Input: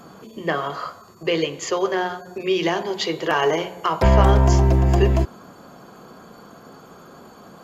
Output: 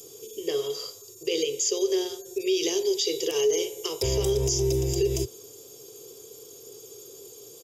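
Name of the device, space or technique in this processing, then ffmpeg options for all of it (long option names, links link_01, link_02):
PA system with an anti-feedback notch: -af "highpass=140,asuperstop=centerf=4300:order=12:qfactor=7.2,firequalizer=gain_entry='entry(120,0);entry(180,-28);entry(420,7);entry(610,-18);entry(1500,-25);entry(2300,-7);entry(4500,12);entry(7800,14)':delay=0.05:min_phase=1,alimiter=limit=-16dB:level=0:latency=1:release=54"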